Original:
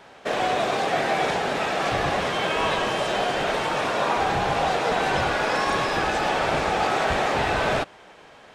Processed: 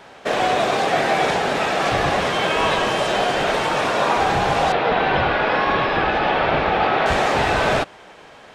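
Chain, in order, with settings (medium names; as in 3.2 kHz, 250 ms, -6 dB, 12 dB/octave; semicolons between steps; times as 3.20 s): 4.72–7.06 s: low-pass 3.7 kHz 24 dB/octave; trim +4.5 dB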